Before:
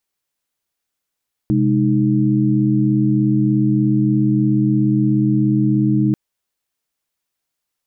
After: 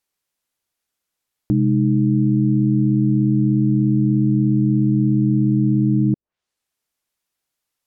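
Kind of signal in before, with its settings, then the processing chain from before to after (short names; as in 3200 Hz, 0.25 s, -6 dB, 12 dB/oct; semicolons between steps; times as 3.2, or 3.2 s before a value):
chord C3/G#3/D#4 sine, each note -17 dBFS 4.64 s
treble ducked by the level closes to 330 Hz, closed at -16 dBFS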